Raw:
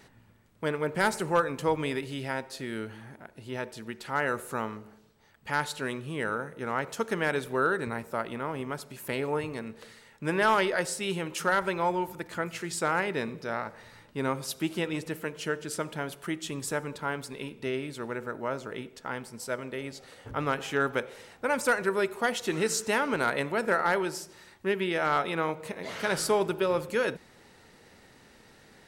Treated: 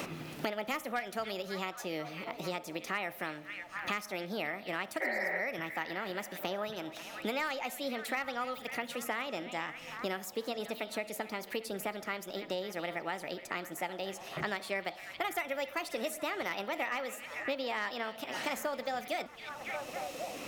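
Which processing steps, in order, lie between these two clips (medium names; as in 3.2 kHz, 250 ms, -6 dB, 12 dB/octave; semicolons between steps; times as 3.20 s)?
spectral replace 7.09–7.57 s, 250–2800 Hz after; wide varispeed 1.41×; repeats whose band climbs or falls 272 ms, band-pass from 3.3 kHz, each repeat -0.7 oct, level -11.5 dB; three bands compressed up and down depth 100%; trim -8 dB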